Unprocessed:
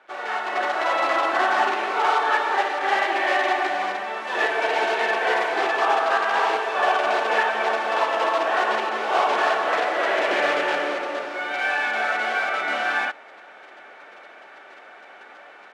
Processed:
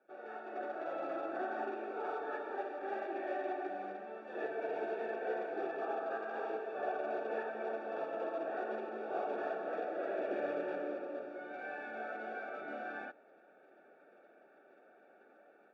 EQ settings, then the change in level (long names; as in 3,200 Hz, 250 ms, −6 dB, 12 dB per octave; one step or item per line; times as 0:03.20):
moving average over 43 samples
high-pass filter 150 Hz 24 dB per octave
−7.5 dB